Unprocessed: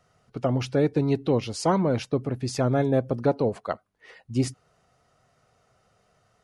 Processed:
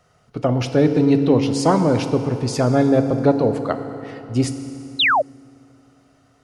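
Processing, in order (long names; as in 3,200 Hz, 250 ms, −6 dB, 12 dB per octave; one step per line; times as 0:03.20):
feedback delay network reverb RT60 3.2 s, high-frequency decay 0.7×, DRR 7.5 dB
sound drawn into the spectrogram fall, 0:04.99–0:05.22, 520–4,200 Hz −21 dBFS
level +5.5 dB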